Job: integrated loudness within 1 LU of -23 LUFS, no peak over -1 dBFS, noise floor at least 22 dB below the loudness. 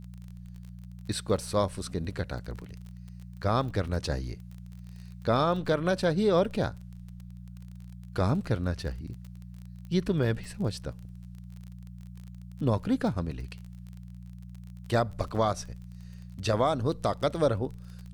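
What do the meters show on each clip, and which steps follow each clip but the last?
ticks 29/s; hum 60 Hz; harmonics up to 180 Hz; hum level -41 dBFS; loudness -29.5 LUFS; peak -14.5 dBFS; loudness target -23.0 LUFS
-> de-click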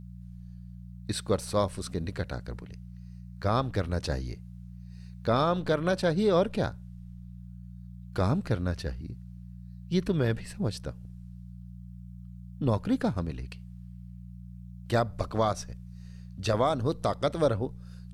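ticks 0/s; hum 60 Hz; harmonics up to 180 Hz; hum level -41 dBFS
-> de-hum 60 Hz, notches 3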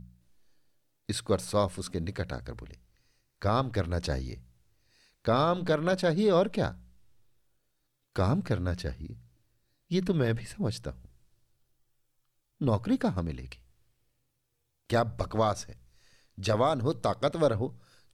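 hum none; loudness -30.0 LUFS; peak -14.0 dBFS; loudness target -23.0 LUFS
-> gain +7 dB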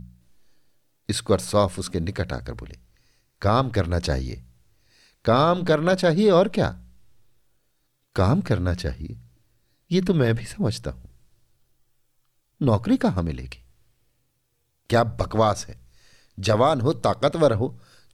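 loudness -23.0 LUFS; peak -7.0 dBFS; noise floor -70 dBFS

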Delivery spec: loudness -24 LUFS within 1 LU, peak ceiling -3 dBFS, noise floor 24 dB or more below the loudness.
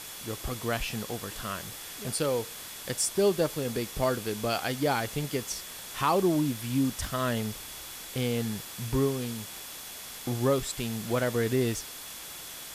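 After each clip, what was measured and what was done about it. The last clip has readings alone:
steady tone 3400 Hz; tone level -51 dBFS; noise floor -42 dBFS; noise floor target -55 dBFS; loudness -30.5 LUFS; peak -13.0 dBFS; loudness target -24.0 LUFS
-> notch 3400 Hz, Q 30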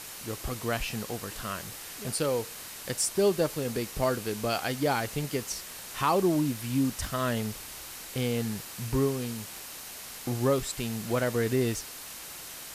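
steady tone none; noise floor -43 dBFS; noise floor target -55 dBFS
-> denoiser 12 dB, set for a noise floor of -43 dBFS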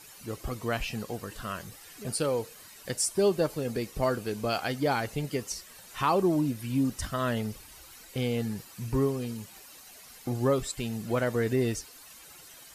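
noise floor -51 dBFS; noise floor target -55 dBFS
-> denoiser 6 dB, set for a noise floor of -51 dBFS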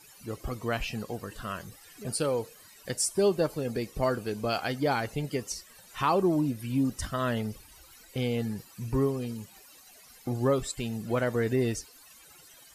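noise floor -54 dBFS; noise floor target -55 dBFS
-> denoiser 6 dB, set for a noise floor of -54 dBFS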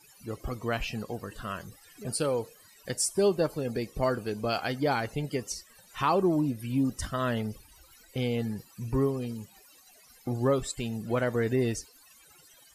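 noise floor -58 dBFS; loudness -30.5 LUFS; peak -14.0 dBFS; loudness target -24.0 LUFS
-> gain +6.5 dB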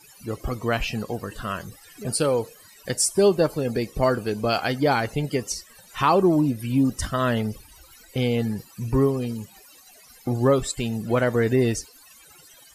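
loudness -24.0 LUFS; peak -7.5 dBFS; noise floor -51 dBFS

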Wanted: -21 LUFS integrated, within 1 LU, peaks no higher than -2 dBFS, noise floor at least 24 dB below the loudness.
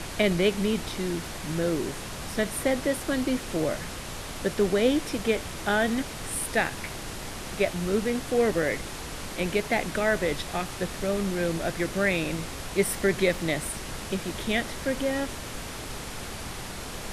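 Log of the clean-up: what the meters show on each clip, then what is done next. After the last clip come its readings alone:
noise floor -37 dBFS; noise floor target -52 dBFS; loudness -28.0 LUFS; peak -10.5 dBFS; loudness target -21.0 LUFS
-> noise print and reduce 15 dB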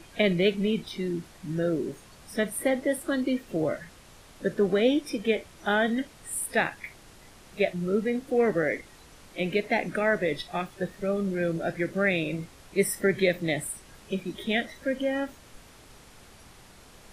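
noise floor -52 dBFS; loudness -28.0 LUFS; peak -10.5 dBFS; loudness target -21.0 LUFS
-> gain +7 dB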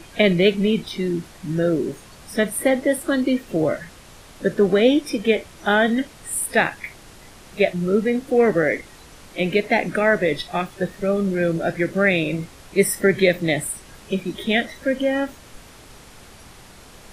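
loudness -21.0 LUFS; peak -3.5 dBFS; noise floor -45 dBFS

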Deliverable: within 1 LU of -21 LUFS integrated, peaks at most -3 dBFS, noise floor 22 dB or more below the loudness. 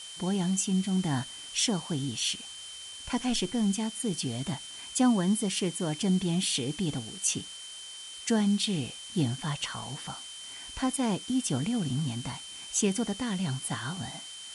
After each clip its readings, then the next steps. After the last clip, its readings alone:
steady tone 3100 Hz; tone level -43 dBFS; noise floor -44 dBFS; noise floor target -53 dBFS; loudness -30.5 LUFS; peak -14.0 dBFS; loudness target -21.0 LUFS
-> notch 3100 Hz, Q 30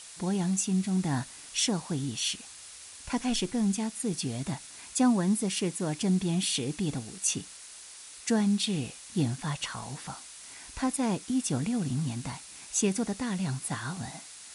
steady tone none; noise floor -48 dBFS; noise floor target -52 dBFS
-> denoiser 6 dB, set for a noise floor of -48 dBFS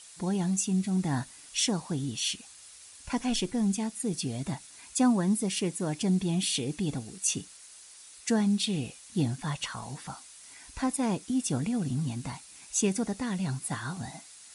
noise floor -51 dBFS; noise floor target -52 dBFS
-> denoiser 6 dB, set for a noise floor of -51 dBFS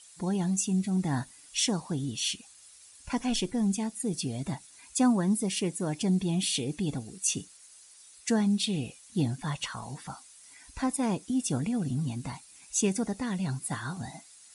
noise floor -54 dBFS; loudness -30.0 LUFS; peak -14.0 dBFS; loudness target -21.0 LUFS
-> gain +9 dB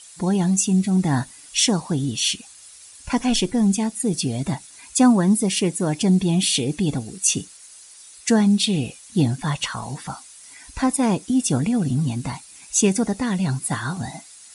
loudness -21.0 LUFS; peak -5.0 dBFS; noise floor -45 dBFS

